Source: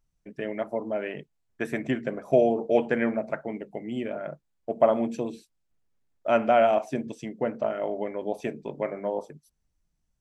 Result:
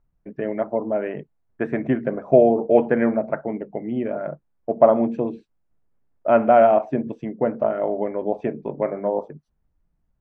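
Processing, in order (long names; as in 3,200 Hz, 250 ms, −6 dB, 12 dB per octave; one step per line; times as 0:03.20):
low-pass filter 1,400 Hz 12 dB per octave
level +6.5 dB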